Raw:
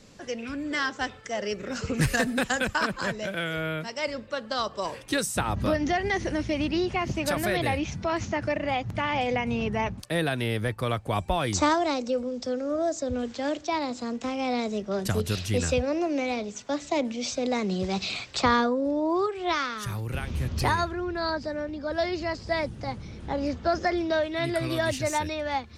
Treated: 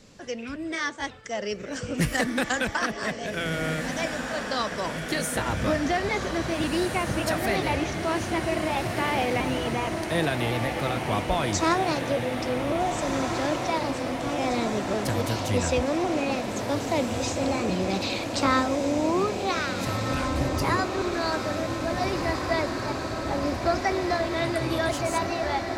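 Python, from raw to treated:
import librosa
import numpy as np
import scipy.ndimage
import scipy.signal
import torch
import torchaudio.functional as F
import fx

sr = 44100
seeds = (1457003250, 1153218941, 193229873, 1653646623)

p1 = fx.pitch_trill(x, sr, semitones=1.5, every_ms=553)
y = p1 + fx.echo_diffused(p1, sr, ms=1703, feedback_pct=75, wet_db=-5.5, dry=0)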